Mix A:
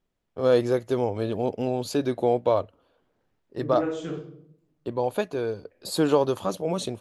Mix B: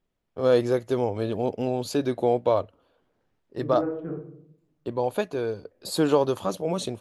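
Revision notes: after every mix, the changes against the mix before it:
second voice: add Gaussian blur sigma 5.8 samples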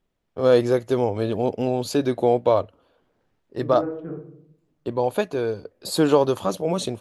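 first voice +3.5 dB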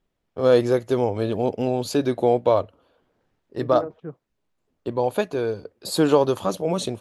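second voice +3.5 dB; reverb: off

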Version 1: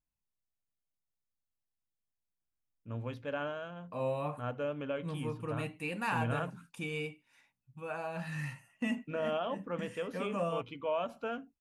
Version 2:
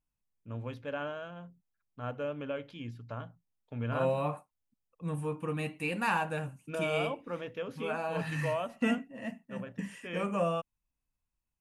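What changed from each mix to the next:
first voice: entry -2.40 s; second voice +4.0 dB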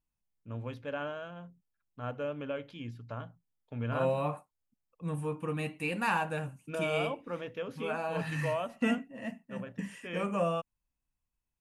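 none

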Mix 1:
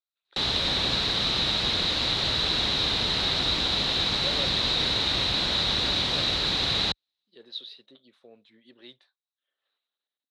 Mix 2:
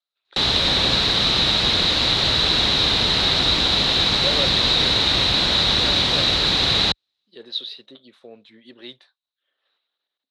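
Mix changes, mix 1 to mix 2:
speech +9.5 dB; background +7.0 dB

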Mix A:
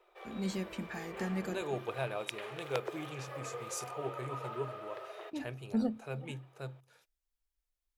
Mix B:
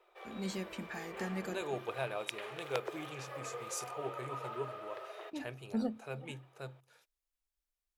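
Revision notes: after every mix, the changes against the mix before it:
master: add low shelf 250 Hz -6 dB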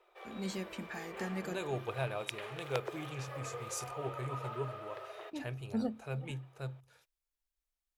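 second voice: remove HPF 200 Hz 12 dB/oct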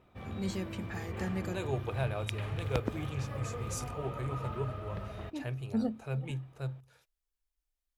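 background: remove steep high-pass 350 Hz 96 dB/oct; master: add low shelf 250 Hz +6 dB

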